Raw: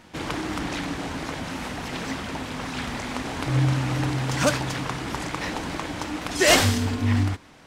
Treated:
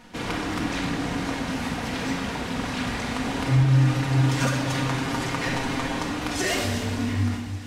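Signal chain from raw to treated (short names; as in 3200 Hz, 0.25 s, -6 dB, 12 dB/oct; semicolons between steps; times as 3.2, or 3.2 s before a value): compressor 10:1, threshold -24 dBFS, peak gain reduction 12.5 dB; 3.45–5.99 comb 7.5 ms, depth 59%; thin delay 0.285 s, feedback 71%, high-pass 2000 Hz, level -14 dB; shoebox room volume 1200 m³, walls mixed, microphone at 1.8 m; gain -1 dB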